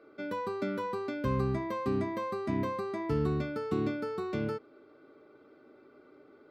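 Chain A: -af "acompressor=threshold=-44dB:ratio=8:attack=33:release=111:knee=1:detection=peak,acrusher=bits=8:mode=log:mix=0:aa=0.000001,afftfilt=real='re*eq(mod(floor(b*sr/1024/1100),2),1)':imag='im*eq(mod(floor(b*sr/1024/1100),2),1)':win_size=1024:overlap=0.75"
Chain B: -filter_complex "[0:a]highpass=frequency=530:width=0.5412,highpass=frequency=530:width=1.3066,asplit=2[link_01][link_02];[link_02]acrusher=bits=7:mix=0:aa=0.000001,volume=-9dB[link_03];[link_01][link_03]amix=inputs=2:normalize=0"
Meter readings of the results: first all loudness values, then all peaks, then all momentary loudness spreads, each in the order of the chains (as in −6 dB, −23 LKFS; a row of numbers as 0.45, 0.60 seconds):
−55.5, −37.0 LKFS; −42.0, −24.5 dBFS; 14, 3 LU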